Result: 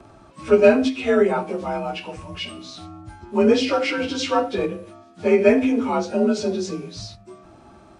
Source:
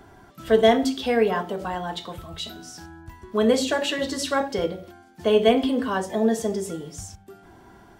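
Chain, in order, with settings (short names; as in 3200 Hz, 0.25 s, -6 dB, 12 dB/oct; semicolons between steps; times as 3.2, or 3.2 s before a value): inharmonic rescaling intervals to 89%; ending taper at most 220 dB/s; gain +4.5 dB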